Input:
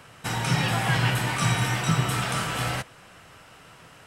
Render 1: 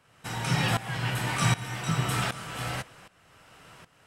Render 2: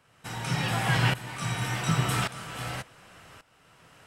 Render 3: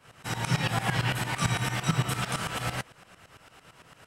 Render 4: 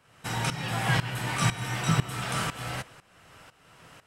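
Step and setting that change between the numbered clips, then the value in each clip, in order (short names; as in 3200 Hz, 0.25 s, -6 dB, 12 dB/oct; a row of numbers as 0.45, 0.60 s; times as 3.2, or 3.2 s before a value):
tremolo, rate: 1.3, 0.88, 8.9, 2 Hz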